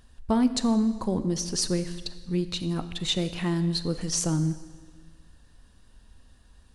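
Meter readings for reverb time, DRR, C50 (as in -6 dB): 1.5 s, 11.5 dB, 12.5 dB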